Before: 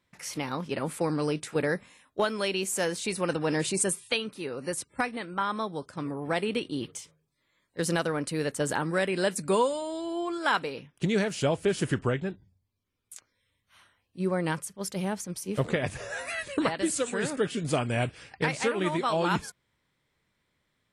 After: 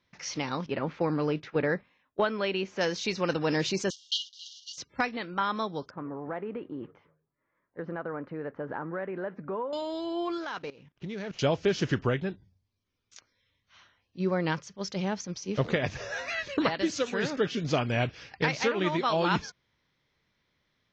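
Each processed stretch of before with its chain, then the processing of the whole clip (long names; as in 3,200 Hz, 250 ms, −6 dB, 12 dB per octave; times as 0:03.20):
0:00.66–0:02.81: noise gate −45 dBFS, range −10 dB + low-pass filter 2,600 Hz
0:03.90–0:04.78: one scale factor per block 3 bits + linear-phase brick-wall high-pass 2,800 Hz
0:05.90–0:09.73: low-pass filter 1,600 Hz 24 dB per octave + downward compressor 3 to 1, threshold −31 dBFS + low-shelf EQ 170 Hz −8.5 dB
0:10.40–0:11.39: running median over 9 samples + low-shelf EQ 87 Hz +4.5 dB + output level in coarse steps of 18 dB
whole clip: Butterworth low-pass 6,300 Hz 72 dB per octave; high-shelf EQ 4,200 Hz +5.5 dB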